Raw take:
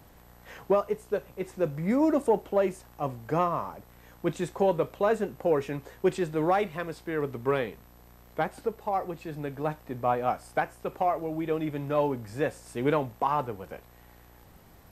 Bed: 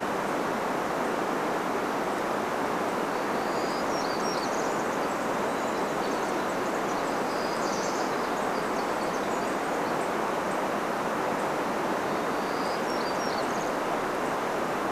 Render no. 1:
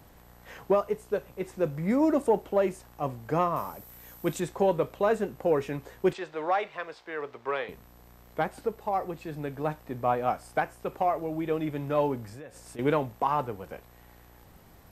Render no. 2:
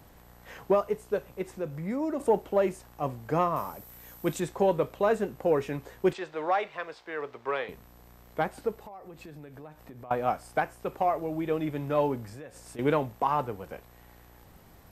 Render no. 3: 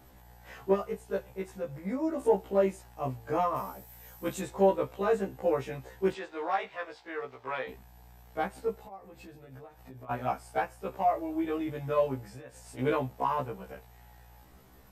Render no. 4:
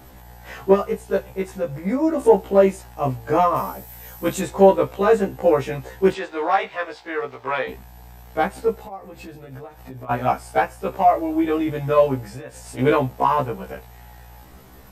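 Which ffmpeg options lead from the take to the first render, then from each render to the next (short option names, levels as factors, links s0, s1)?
-filter_complex "[0:a]asettb=1/sr,asplit=3[s0][s1][s2];[s0]atrim=end=3.564[s3];[s1]atrim=start=3.56:end=4.4,asetpts=PTS-STARTPTS,afade=t=in:d=0.004:c=qsin,afade=t=out:st=0.836:d=0.004:c=qsin,aemphasis=mode=production:type=50fm[s4];[s2]atrim=start=4.396[s5];[s3][s4]acrossfade=d=0.004:c1=hsin:c2=qsin[s6];[s6][s5]acrossfade=d=0.004:c1=qsin:c2=hsin,asettb=1/sr,asplit=3[s7][s8][s9];[s7]atrim=end=6.134[s10];[s8]atrim=start=6.13:end=7.69,asetpts=PTS-STARTPTS,afade=t=in:d=0.004:c=qsin,afade=t=out:st=1.556:d=0.004:c=qsin,acrossover=split=460 6000:gain=0.112 1 0.0794[s11][s12][s13];[s11][s12][s13]amix=inputs=3:normalize=0[s14];[s9]atrim=start=7.686[s15];[s10][s14]acrossfade=d=0.004:c1=hsin:c2=qsin[s16];[s16][s15]acrossfade=d=0.004:c1=qsin:c2=hsin,asettb=1/sr,asplit=3[s17][s18][s19];[s17]atrim=end=12.264[s20];[s18]atrim=start=12.26:end=12.79,asetpts=PTS-STARTPTS,afade=t=in:d=0.004:c=qsin,afade=t=out:st=0.526:d=0.004:c=qsin,acompressor=threshold=0.01:ratio=8:attack=3.2:release=140:knee=1:detection=peak[s21];[s19]atrim=start=12.786[s22];[s20][s21]acrossfade=d=0.004:c1=hsin:c2=qsin[s23];[s23][s22]acrossfade=d=0.004:c1=qsin:c2=hsin"
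-filter_complex "[0:a]asettb=1/sr,asplit=3[s0][s1][s2];[s0]atrim=end=1.424[s3];[s1]atrim=start=1.42:end=2.2,asetpts=PTS-STARTPTS,afade=t=in:d=0.004:c=qsin,afade=t=out:st=0.776:d=0.004:c=qsin,acompressor=threshold=0.0112:ratio=1.5:attack=3.2:release=140:knee=1:detection=peak[s4];[s2]atrim=start=2.196[s5];[s3][s4]acrossfade=d=0.004:c1=hsin:c2=qsin[s6];[s6][s5]acrossfade=d=0.004:c1=qsin:c2=hsin,asettb=1/sr,asplit=3[s7][s8][s9];[s7]atrim=end=8.794[s10];[s8]atrim=start=8.79:end=10.11,asetpts=PTS-STARTPTS,afade=t=in:d=0.004:c=qsin,afade=t=out:st=1.316:d=0.004:c=qsin,acompressor=threshold=0.00794:ratio=8:attack=3.2:release=140:knee=1:detection=peak[s11];[s9]atrim=start=10.106[s12];[s10][s11]acrossfade=d=0.004:c1=hsin:c2=qsin[s13];[s13][s12]acrossfade=d=0.004:c1=qsin:c2=hsin"
-af "afftfilt=real='re*1.73*eq(mod(b,3),0)':imag='im*1.73*eq(mod(b,3),0)':win_size=2048:overlap=0.75"
-af "volume=3.55"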